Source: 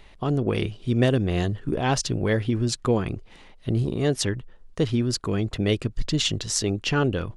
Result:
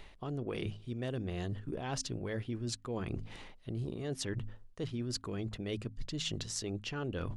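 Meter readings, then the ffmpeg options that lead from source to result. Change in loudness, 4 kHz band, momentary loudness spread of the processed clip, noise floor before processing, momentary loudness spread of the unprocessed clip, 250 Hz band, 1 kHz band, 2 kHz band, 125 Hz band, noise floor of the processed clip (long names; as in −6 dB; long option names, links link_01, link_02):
−14.0 dB, −12.5 dB, 4 LU, −51 dBFS, 5 LU, −14.0 dB, −15.0 dB, −14.0 dB, −14.0 dB, −56 dBFS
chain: -af "bandreject=frequency=52.78:width_type=h:width=4,bandreject=frequency=105.56:width_type=h:width=4,bandreject=frequency=158.34:width_type=h:width=4,bandreject=frequency=211.12:width_type=h:width=4,bandreject=frequency=263.9:width_type=h:width=4,areverse,acompressor=threshold=-35dB:ratio=8,areverse"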